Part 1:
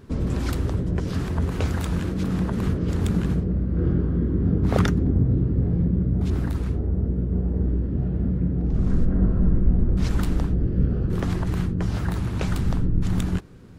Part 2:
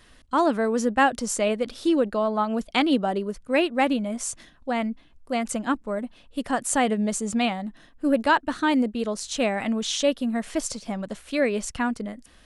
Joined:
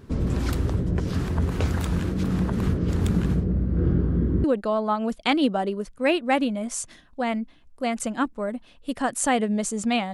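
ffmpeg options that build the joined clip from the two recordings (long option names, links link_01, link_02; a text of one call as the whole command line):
ffmpeg -i cue0.wav -i cue1.wav -filter_complex "[0:a]apad=whole_dur=10.13,atrim=end=10.13,atrim=end=4.442[link_01];[1:a]atrim=start=1.928:end=7.62[link_02];[link_01][link_02]acrossfade=duration=0.004:curve1=hsin:curve2=hsin" out.wav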